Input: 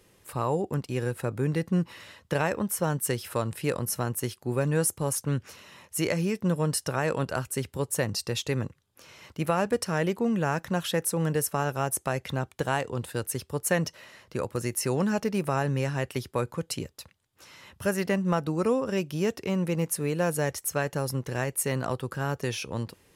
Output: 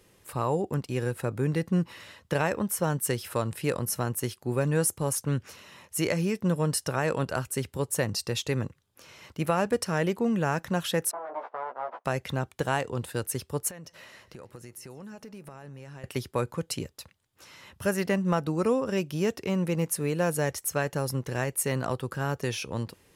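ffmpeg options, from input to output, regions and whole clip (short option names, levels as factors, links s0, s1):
-filter_complex "[0:a]asettb=1/sr,asplit=3[s0][s1][s2];[s0]atrim=end=11.114[s3];[s1]atrim=start=11.11:end=12.05,asetpts=PTS-STARTPTS,afade=t=in:d=0.004:c=qsin,afade=t=out:st=0.936:d=0.004:c=qsin,aeval=exprs='abs(val(0))':c=same,asuperpass=centerf=800:order=4:qfactor=1.2,asplit=2[s4][s5];[s5]adelay=16,volume=0.631[s6];[s4][s6]amix=inputs=2:normalize=0,atrim=end_sample=41454[s7];[s2]atrim=start=12.046[s8];[s3][s7]acrossfade=d=0.004:c1=hsin:c2=qsin[s9];[s9][s8]acrossfade=d=0.004:c1=qsin:c2=hsin,asettb=1/sr,asplit=3[s10][s11][s12];[s10]atrim=end=13.704[s13];[s11]atrim=start=13.7:end=16.04,asetpts=PTS-STARTPTS,afade=t=in:d=0.004:c=qsin,afade=t=out:st=2.336:d=0.004:c=qsin,acompressor=threshold=0.00794:ratio=6:attack=3.2:release=140:knee=1:detection=peak,aecho=1:1:141|282|423|564:0.075|0.039|0.0203|0.0105,atrim=end_sample=103194[s14];[s12]atrim=start=16.036[s15];[s13][s14]acrossfade=d=0.004:c1=hsin:c2=qsin[s16];[s16][s15]acrossfade=d=0.004:c1=qsin:c2=hsin"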